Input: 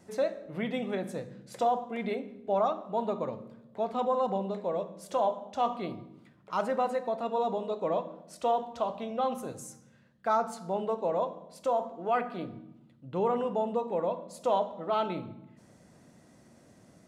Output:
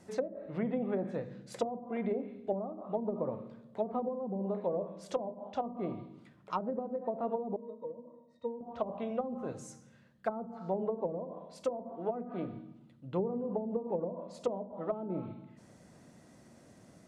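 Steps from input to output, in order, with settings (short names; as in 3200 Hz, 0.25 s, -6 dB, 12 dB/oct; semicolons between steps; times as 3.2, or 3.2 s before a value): treble ducked by the level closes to 310 Hz, closed at -25.5 dBFS; 7.56–8.61 octave resonator A#, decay 0.1 s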